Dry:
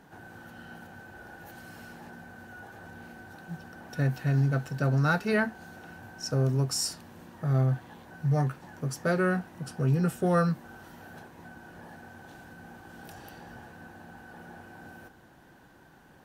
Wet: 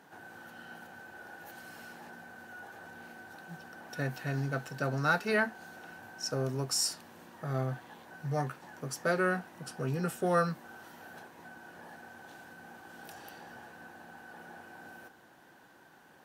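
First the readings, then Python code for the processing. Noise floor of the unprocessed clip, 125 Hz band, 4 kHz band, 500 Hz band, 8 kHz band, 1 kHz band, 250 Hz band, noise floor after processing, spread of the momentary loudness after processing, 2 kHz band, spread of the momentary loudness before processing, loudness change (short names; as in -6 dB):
-56 dBFS, -9.5 dB, 0.0 dB, -2.5 dB, 0.0 dB, -0.5 dB, -7.0 dB, -59 dBFS, 20 LU, -0.5 dB, 22 LU, -5.0 dB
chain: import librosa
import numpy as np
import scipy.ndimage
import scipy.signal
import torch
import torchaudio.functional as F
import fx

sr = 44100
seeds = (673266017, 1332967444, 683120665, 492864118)

y = fx.highpass(x, sr, hz=410.0, slope=6)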